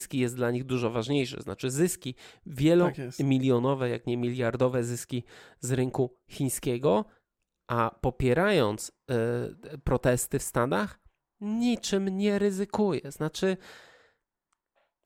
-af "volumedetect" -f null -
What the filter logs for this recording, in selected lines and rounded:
mean_volume: -28.6 dB
max_volume: -9.8 dB